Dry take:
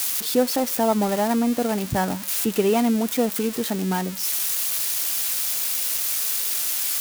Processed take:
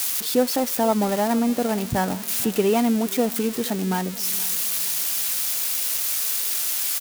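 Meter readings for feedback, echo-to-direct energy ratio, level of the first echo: 37%, -19.5 dB, -20.0 dB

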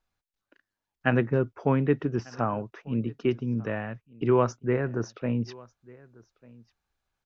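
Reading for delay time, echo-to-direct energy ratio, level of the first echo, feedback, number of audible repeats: 1195 ms, -24.0 dB, -24.0 dB, no regular repeats, 1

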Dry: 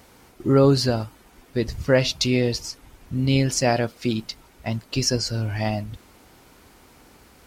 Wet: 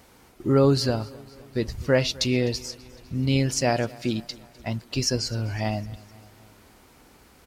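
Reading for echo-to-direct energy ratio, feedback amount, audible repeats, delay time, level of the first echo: -21.0 dB, 58%, 3, 254 ms, -22.5 dB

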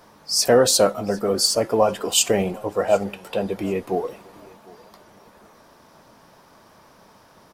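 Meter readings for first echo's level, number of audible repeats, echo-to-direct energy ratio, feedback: -23.5 dB, 2, -23.0 dB, 28%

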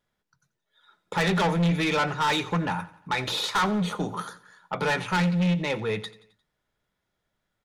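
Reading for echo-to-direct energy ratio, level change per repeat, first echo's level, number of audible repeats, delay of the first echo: -18.0 dB, -6.0 dB, -19.0 dB, 3, 88 ms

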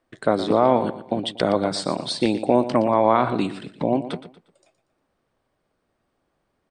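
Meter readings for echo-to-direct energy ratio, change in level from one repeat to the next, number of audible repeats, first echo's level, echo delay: -12.5 dB, -9.5 dB, 3, -13.0 dB, 118 ms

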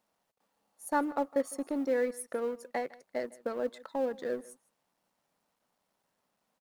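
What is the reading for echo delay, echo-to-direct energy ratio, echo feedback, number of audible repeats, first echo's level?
156 ms, -21.5 dB, no regular repeats, 1, -21.5 dB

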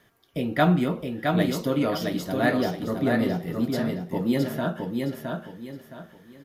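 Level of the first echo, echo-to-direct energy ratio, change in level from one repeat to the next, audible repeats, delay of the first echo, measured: -4.0 dB, -3.5 dB, -10.5 dB, 3, 666 ms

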